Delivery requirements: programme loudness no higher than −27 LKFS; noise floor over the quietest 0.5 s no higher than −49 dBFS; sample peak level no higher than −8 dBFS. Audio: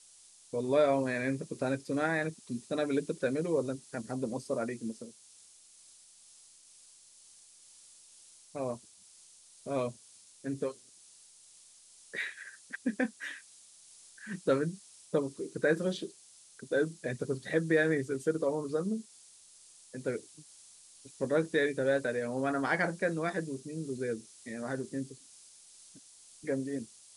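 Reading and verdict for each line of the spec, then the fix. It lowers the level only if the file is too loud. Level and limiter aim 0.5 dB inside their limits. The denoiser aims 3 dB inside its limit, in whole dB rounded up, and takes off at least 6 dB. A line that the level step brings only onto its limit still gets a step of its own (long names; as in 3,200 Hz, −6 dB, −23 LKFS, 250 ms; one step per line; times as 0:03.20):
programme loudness −33.5 LKFS: in spec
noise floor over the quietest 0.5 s −58 dBFS: in spec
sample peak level −15.5 dBFS: in spec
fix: no processing needed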